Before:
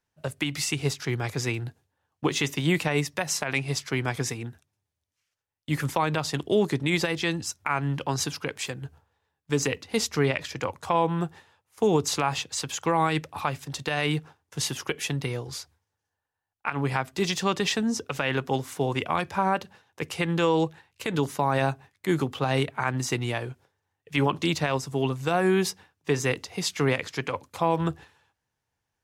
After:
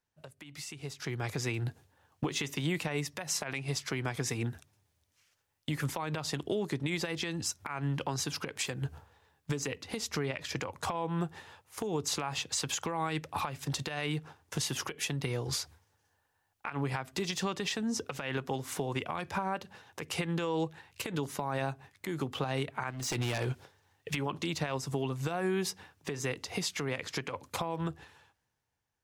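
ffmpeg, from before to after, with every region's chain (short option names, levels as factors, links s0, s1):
-filter_complex "[0:a]asettb=1/sr,asplit=3[s0][s1][s2];[s0]atrim=end=22.904[s3];[s1]atrim=start=22.9:end=24.15,asetpts=PTS-STARTPTS,afade=t=in:d=0.004:c=qsin,afade=t=out:st=1.246:d=0.004:c=qsin,equalizer=f=4000:t=o:w=1.5:g=4,acompressor=threshold=0.0251:ratio=5:attack=3.2:release=140:knee=1:detection=peak,aeval=exprs='0.0282*(abs(mod(val(0)/0.0282+3,4)-2)-1)':c=same[s4];[s2]atrim=start=24.146[s5];[s3][s4]acrossfade=d=0.004:c1=hsin:c2=qsin[s6];[s6][s5]acrossfade=d=0.004:c1=qsin:c2=hsin,acompressor=threshold=0.0112:ratio=6,alimiter=level_in=2.24:limit=0.0631:level=0:latency=1:release=176,volume=0.447,dynaudnorm=f=100:g=21:m=5.01,volume=0.596"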